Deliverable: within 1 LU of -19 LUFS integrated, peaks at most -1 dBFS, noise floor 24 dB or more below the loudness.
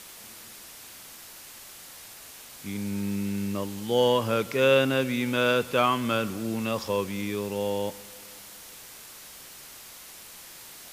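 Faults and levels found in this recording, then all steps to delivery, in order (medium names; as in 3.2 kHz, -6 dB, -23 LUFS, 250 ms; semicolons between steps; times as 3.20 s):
noise floor -46 dBFS; noise floor target -51 dBFS; loudness -26.5 LUFS; peak level -9.5 dBFS; loudness target -19.0 LUFS
-> noise reduction 6 dB, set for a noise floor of -46 dBFS; trim +7.5 dB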